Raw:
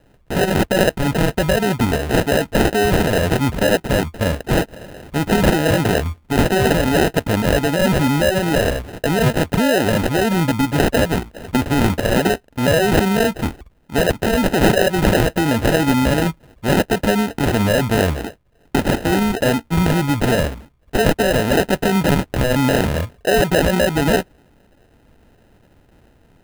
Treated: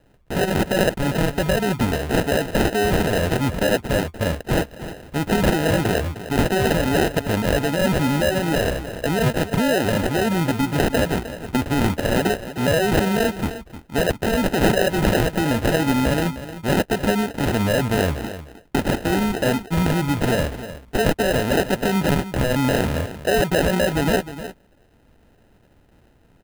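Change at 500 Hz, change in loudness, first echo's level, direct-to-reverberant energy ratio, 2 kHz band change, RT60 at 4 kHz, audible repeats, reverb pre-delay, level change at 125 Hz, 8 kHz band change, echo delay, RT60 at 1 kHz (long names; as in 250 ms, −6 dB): −3.5 dB, −3.5 dB, −13.0 dB, no reverb audible, −3.5 dB, no reverb audible, 1, no reverb audible, −3.5 dB, −3.5 dB, 307 ms, no reverb audible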